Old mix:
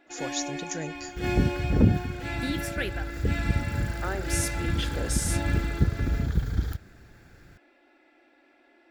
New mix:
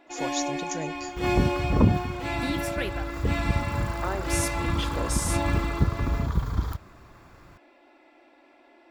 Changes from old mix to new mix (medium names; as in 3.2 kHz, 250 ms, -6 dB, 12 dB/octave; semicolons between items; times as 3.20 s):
first sound +3.5 dB; second sound: add peaking EQ 1.1 kHz +13.5 dB 0.49 oct; master: add graphic EQ with 31 bands 630 Hz +4 dB, 1 kHz +9 dB, 1.6 kHz -6 dB